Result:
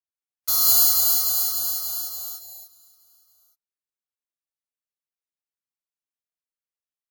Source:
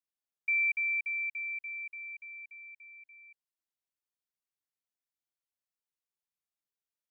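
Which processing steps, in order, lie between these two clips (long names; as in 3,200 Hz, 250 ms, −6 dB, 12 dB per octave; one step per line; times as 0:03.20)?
samples in bit-reversed order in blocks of 256 samples
noise reduction from a noise print of the clip's start 18 dB
reverb whose tail is shaped and stops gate 240 ms rising, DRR −4 dB
level +7 dB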